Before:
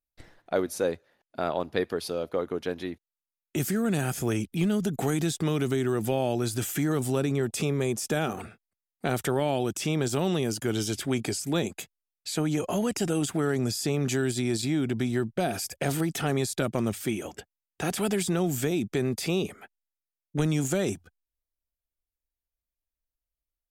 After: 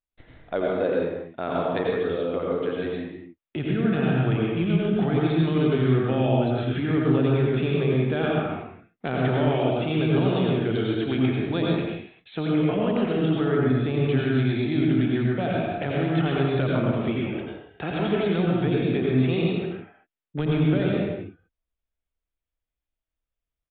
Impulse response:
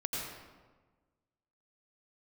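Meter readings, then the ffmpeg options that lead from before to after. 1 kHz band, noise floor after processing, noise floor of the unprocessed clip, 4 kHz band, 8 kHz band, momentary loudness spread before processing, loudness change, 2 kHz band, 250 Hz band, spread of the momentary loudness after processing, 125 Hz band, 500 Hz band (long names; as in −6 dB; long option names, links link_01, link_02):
+3.5 dB, below −85 dBFS, below −85 dBFS, 0.0 dB, below −40 dB, 7 LU, +4.5 dB, +3.5 dB, +5.0 dB, 10 LU, +6.5 dB, +4.5 dB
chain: -filter_complex "[1:a]atrim=start_sample=2205,afade=type=out:start_time=0.45:duration=0.01,atrim=end_sample=20286[link_01];[0:a][link_01]afir=irnorm=-1:irlink=0,aresample=8000,aresample=44100"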